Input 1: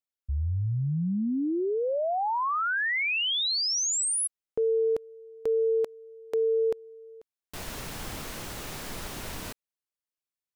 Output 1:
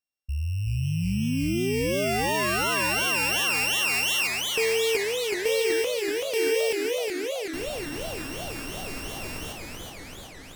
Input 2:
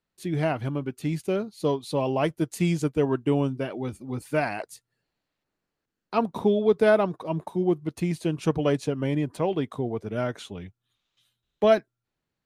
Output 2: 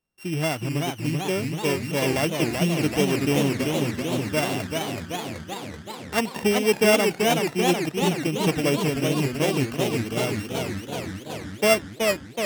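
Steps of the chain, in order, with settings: sample sorter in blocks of 16 samples; warbling echo 0.379 s, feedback 72%, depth 187 cents, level -4 dB

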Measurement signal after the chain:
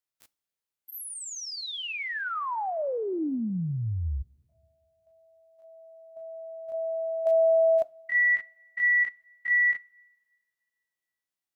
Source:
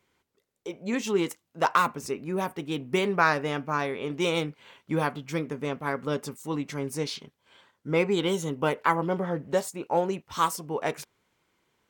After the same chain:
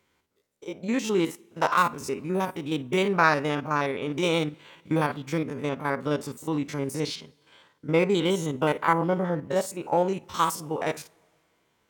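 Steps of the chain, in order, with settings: stepped spectrum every 50 ms; two-slope reverb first 0.3 s, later 2 s, from -18 dB, DRR 17.5 dB; gain +3 dB

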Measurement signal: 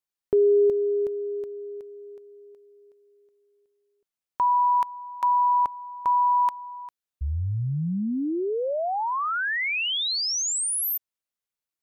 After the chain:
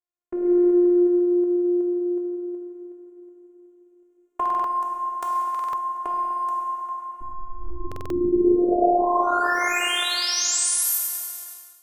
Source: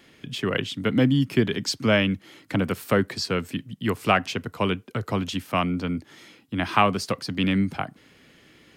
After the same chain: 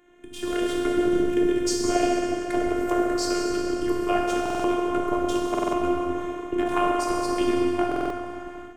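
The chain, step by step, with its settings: Wiener smoothing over 9 samples; graphic EQ 2000/4000/8000 Hz -6/-9/+7 dB; compressor 4:1, threshold -37 dBFS; on a send: thinning echo 0.184 s, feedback 70%, high-pass 280 Hz, level -19 dB; on the sum: plate-style reverb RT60 3.5 s, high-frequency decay 0.6×, DRR -4.5 dB; AGC gain up to 11 dB; HPF 98 Hz 12 dB/oct; robotiser 353 Hz; dynamic EQ 500 Hz, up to +5 dB, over -39 dBFS, Q 1.6; stuck buffer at 4.41/5.5/7.87, samples 2048, times 4

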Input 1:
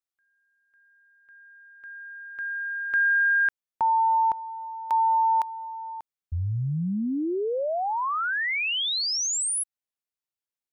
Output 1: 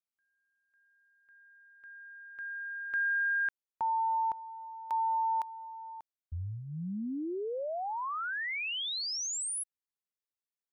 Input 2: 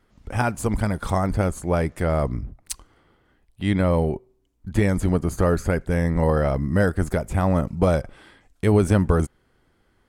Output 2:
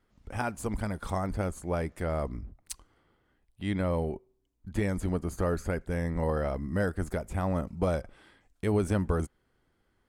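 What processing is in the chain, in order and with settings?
dynamic EQ 130 Hz, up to -8 dB, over -43 dBFS, Q 4; gain -8.5 dB

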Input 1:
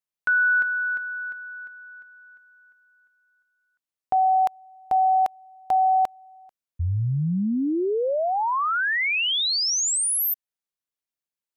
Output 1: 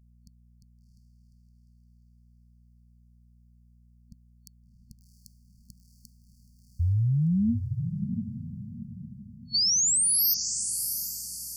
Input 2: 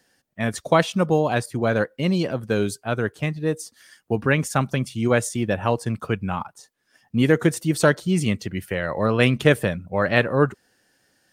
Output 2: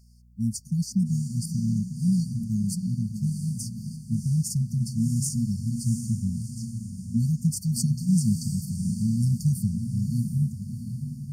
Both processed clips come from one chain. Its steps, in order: diffused feedback echo 0.699 s, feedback 41%, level -7 dB; hum 60 Hz, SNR 33 dB; FFT band-reject 240–4400 Hz

